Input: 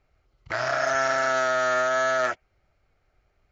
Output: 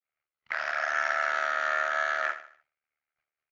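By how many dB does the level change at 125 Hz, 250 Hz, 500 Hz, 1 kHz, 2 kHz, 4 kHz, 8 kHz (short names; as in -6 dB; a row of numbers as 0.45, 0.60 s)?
under -25 dB, under -15 dB, -12.0 dB, -4.5 dB, -1.0 dB, -6.0 dB, n/a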